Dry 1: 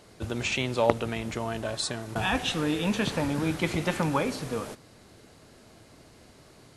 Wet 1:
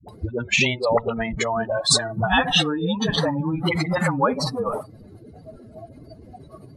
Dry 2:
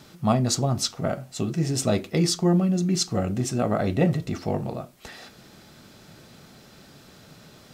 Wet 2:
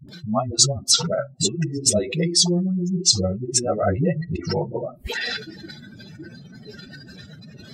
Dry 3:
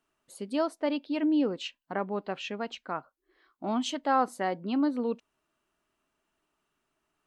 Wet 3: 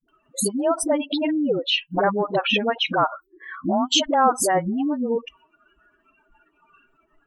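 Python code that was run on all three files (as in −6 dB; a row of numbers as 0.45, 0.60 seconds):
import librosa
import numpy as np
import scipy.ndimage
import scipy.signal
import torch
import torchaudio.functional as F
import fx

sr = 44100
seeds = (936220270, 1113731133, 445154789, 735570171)

y = fx.spec_expand(x, sr, power=2.4)
y = fx.dynamic_eq(y, sr, hz=290.0, q=1.1, threshold_db=-39.0, ratio=4.0, max_db=-7)
y = fx.noise_reduce_blind(y, sr, reduce_db=18)
y = fx.dispersion(y, sr, late='highs', ms=87.0, hz=360.0)
y = fx.spectral_comp(y, sr, ratio=2.0)
y = y * 10.0 ** (-24 / 20.0) / np.sqrt(np.mean(np.square(y)))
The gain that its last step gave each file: +10.0, +11.0, +11.5 decibels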